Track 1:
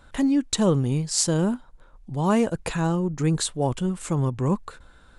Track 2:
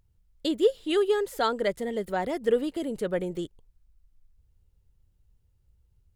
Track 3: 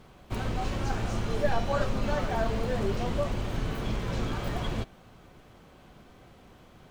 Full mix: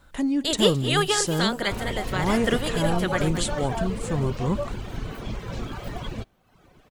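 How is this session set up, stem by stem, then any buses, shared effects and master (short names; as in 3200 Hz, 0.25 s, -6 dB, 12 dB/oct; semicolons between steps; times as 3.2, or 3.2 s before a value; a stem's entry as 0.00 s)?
-3.0 dB, 0.00 s, no send, echo send -20.5 dB, dry
-1.0 dB, 0.00 s, no send, echo send -17.5 dB, spectral limiter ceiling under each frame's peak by 21 dB; AGC gain up to 8 dB; auto duck -6 dB, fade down 1.30 s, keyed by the first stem
+0.5 dB, 1.40 s, no send, no echo send, reverb removal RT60 0.83 s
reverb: off
echo: echo 0.215 s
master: dry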